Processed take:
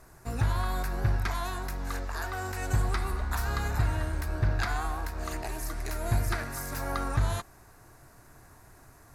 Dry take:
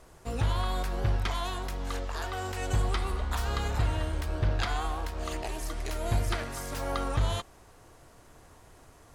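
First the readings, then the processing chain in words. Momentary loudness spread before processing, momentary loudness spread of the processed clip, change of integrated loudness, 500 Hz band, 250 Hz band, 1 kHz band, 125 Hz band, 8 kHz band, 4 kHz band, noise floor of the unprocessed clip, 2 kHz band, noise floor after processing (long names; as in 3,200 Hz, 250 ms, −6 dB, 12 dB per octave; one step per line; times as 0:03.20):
6 LU, 7 LU, +0.5 dB, −2.5 dB, 0.0 dB, 0.0 dB, +1.0 dB, +1.0 dB, −4.5 dB, −56 dBFS, +2.5 dB, −55 dBFS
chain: thirty-one-band graphic EQ 125 Hz +5 dB, 500 Hz −7 dB, 1,600 Hz +5 dB, 3,150 Hz −11 dB, 12,500 Hz +9 dB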